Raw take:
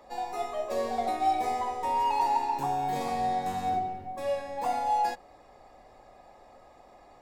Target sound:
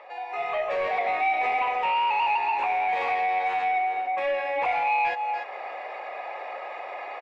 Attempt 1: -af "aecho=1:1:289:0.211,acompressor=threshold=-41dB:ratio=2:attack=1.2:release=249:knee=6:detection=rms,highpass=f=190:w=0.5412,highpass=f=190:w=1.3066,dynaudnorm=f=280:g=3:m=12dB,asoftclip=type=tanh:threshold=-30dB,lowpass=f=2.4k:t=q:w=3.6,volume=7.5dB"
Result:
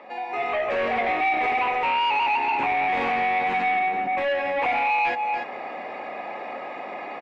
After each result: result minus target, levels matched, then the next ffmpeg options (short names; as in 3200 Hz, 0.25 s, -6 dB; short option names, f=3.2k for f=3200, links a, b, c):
250 Hz band +11.5 dB; compressor: peak gain reduction -4 dB
-af "aecho=1:1:289:0.211,acompressor=threshold=-41dB:ratio=2:attack=1.2:release=249:knee=6:detection=rms,highpass=f=470:w=0.5412,highpass=f=470:w=1.3066,dynaudnorm=f=280:g=3:m=12dB,asoftclip=type=tanh:threshold=-30dB,lowpass=f=2.4k:t=q:w=3.6,volume=7.5dB"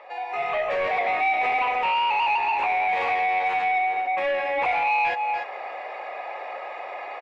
compressor: peak gain reduction -4 dB
-af "aecho=1:1:289:0.211,acompressor=threshold=-48.5dB:ratio=2:attack=1.2:release=249:knee=6:detection=rms,highpass=f=470:w=0.5412,highpass=f=470:w=1.3066,dynaudnorm=f=280:g=3:m=12dB,asoftclip=type=tanh:threshold=-30dB,lowpass=f=2.4k:t=q:w=3.6,volume=7.5dB"